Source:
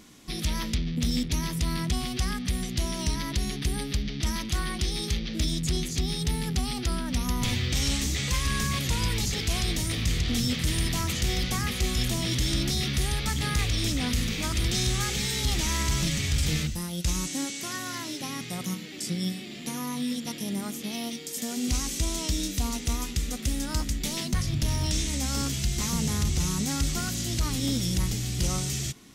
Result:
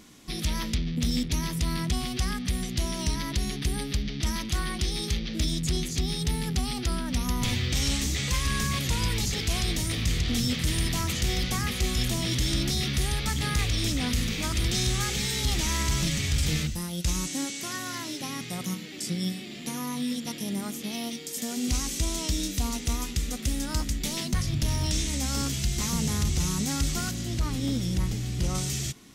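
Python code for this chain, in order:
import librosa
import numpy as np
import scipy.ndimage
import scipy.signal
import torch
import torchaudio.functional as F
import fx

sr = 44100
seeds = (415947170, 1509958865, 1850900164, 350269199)

y = fx.high_shelf(x, sr, hz=3000.0, db=-8.5, at=(27.11, 28.55))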